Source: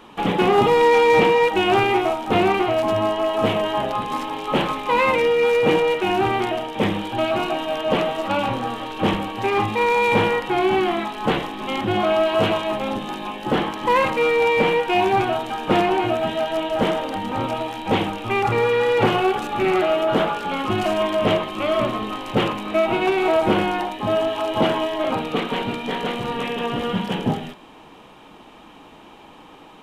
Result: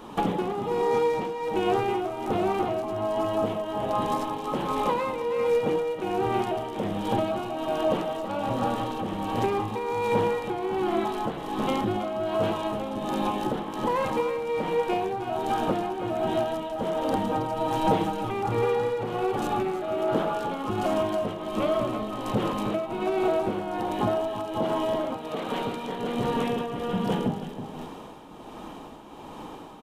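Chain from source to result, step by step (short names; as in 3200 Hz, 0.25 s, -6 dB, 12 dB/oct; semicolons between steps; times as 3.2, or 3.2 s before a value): bell 2400 Hz -9.5 dB 1.5 oct; compressor 6:1, threshold -29 dBFS, peak gain reduction 15 dB; echo 0.323 s -6.5 dB; tremolo triangle 1.3 Hz, depth 60%; 17.29–18.31 comb 6.4 ms, depth 69%; 25.16–25.9 low shelf 420 Hz -7 dB; gain +6.5 dB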